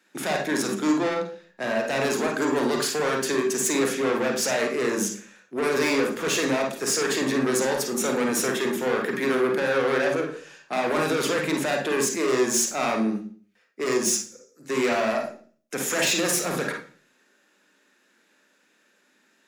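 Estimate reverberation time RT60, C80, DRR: 0.40 s, 12.0 dB, 2.0 dB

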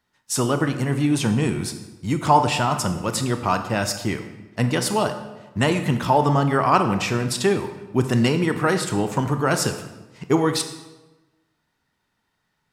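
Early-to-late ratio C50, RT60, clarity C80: 9.5 dB, 1.1 s, 11.5 dB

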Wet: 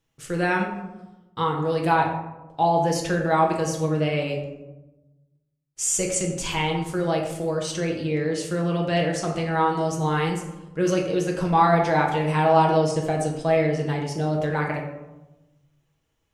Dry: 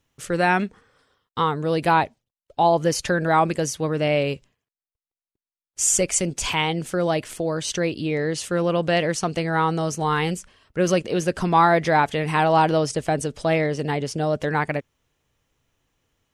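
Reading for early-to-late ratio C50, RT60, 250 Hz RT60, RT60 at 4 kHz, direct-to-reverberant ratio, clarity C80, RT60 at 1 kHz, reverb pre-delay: 5.5 dB, 1.1 s, 1.3 s, 0.50 s, -0.5 dB, 7.5 dB, 1.0 s, 6 ms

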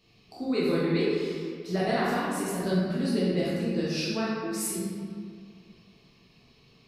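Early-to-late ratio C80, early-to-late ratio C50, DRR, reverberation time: 0.0 dB, -2.5 dB, -8.0 dB, 2.1 s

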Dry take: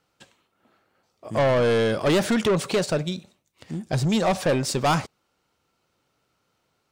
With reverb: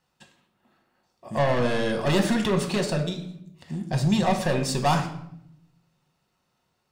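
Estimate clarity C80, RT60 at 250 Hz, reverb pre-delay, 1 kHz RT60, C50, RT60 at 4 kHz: 12.5 dB, 1.1 s, 5 ms, 0.70 s, 10.0 dB, 0.55 s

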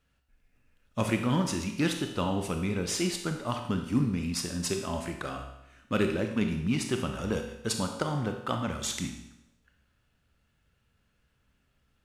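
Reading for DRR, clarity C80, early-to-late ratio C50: 4.5 dB, 9.0 dB, 6.5 dB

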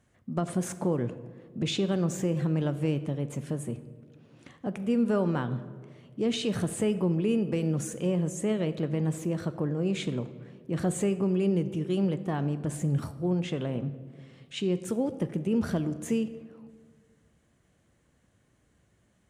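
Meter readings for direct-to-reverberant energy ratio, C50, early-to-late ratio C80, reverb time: 11.0 dB, 13.5 dB, 14.5 dB, 1.7 s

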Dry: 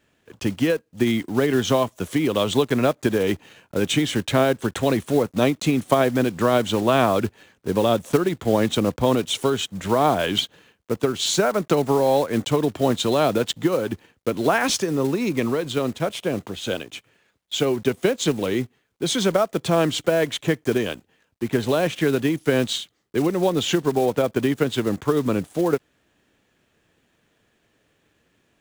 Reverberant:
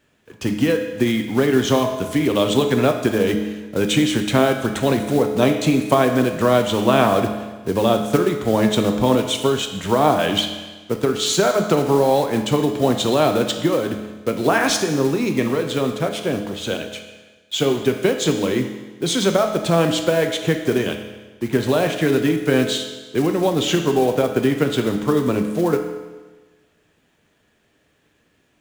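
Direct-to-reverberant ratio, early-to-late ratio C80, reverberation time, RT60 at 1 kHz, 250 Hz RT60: 4.5 dB, 9.0 dB, 1.3 s, 1.3 s, 1.3 s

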